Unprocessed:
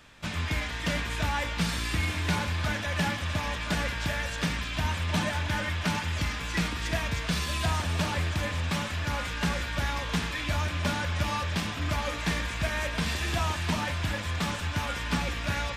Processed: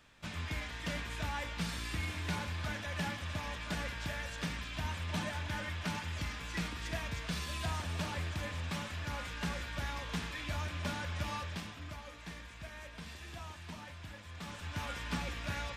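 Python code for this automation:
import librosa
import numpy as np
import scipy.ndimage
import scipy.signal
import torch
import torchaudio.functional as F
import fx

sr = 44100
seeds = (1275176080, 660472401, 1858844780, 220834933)

y = fx.gain(x, sr, db=fx.line((11.36, -9.0), (12.03, -18.0), (14.28, -18.0), (14.82, -8.5)))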